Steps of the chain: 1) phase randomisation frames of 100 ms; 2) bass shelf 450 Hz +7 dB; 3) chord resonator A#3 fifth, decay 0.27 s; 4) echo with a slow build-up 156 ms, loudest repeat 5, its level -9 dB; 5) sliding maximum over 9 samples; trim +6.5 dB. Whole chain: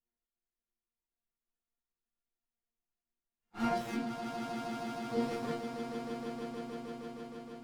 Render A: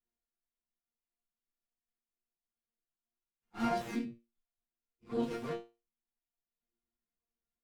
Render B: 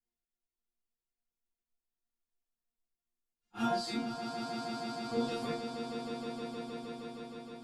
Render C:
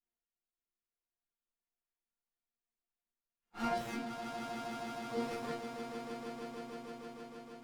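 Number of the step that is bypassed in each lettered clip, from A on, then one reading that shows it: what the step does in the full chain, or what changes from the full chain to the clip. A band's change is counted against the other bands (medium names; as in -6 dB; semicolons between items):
4, crest factor change +3.0 dB; 5, 4 kHz band +6.0 dB; 2, 250 Hz band -4.0 dB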